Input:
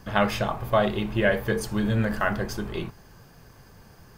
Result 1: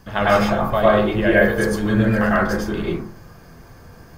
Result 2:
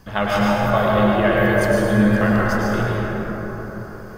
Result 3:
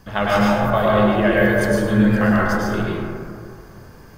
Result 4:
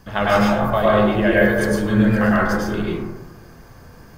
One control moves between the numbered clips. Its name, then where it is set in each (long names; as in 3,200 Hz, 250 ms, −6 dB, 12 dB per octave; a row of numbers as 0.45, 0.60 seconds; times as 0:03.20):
dense smooth reverb, RT60: 0.5, 5, 2.2, 1.1 seconds